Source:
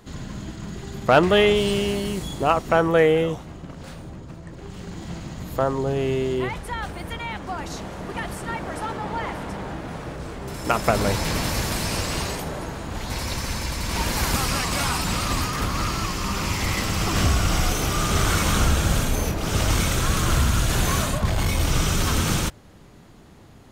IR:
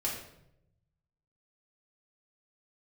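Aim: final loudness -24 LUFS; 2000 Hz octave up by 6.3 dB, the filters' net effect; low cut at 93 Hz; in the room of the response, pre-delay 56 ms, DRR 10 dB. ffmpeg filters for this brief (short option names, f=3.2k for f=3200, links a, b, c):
-filter_complex "[0:a]highpass=93,equalizer=f=2k:t=o:g=8,asplit=2[a][b];[1:a]atrim=start_sample=2205,adelay=56[c];[b][c]afir=irnorm=-1:irlink=0,volume=-14.5dB[d];[a][d]amix=inputs=2:normalize=0,volume=-2.5dB"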